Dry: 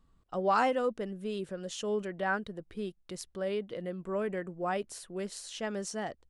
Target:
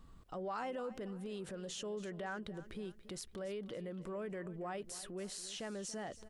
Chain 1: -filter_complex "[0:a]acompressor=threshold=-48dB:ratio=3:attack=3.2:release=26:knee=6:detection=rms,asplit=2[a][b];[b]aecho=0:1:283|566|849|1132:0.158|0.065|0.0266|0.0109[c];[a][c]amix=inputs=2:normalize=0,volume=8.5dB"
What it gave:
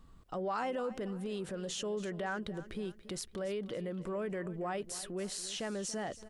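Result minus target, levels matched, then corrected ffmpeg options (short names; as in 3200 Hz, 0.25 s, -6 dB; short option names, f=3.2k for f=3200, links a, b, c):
compressor: peak gain reduction -5.5 dB
-filter_complex "[0:a]acompressor=threshold=-56dB:ratio=3:attack=3.2:release=26:knee=6:detection=rms,asplit=2[a][b];[b]aecho=0:1:283|566|849|1132:0.158|0.065|0.0266|0.0109[c];[a][c]amix=inputs=2:normalize=0,volume=8.5dB"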